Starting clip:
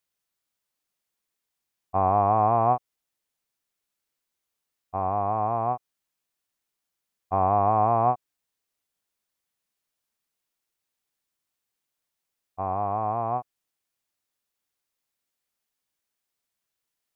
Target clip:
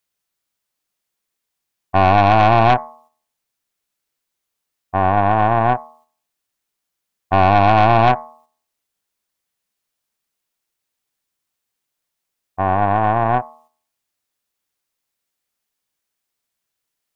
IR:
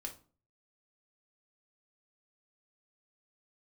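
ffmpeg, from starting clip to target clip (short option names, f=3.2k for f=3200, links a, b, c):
-af "bandreject=f=78.62:t=h:w=4,bandreject=f=157.24:t=h:w=4,bandreject=f=235.86:t=h:w=4,bandreject=f=314.48:t=h:w=4,bandreject=f=393.1:t=h:w=4,bandreject=f=471.72:t=h:w=4,bandreject=f=550.34:t=h:w=4,bandreject=f=628.96:t=h:w=4,bandreject=f=707.58:t=h:w=4,bandreject=f=786.2:t=h:w=4,bandreject=f=864.82:t=h:w=4,bandreject=f=943.44:t=h:w=4,bandreject=f=1.02206k:t=h:w=4,bandreject=f=1.10068k:t=h:w=4,bandreject=f=1.1793k:t=h:w=4,bandreject=f=1.25792k:t=h:w=4,aeval=exprs='0.316*(cos(1*acos(clip(val(0)/0.316,-1,1)))-cos(1*PI/2))+0.112*(cos(2*acos(clip(val(0)/0.316,-1,1)))-cos(2*PI/2))+0.1*(cos(4*acos(clip(val(0)/0.316,-1,1)))-cos(4*PI/2))+0.0282*(cos(5*acos(clip(val(0)/0.316,-1,1)))-cos(5*PI/2))+0.00794*(cos(8*acos(clip(val(0)/0.316,-1,1)))-cos(8*PI/2))':c=same,agate=range=-6dB:threshold=-56dB:ratio=16:detection=peak,volume=7dB"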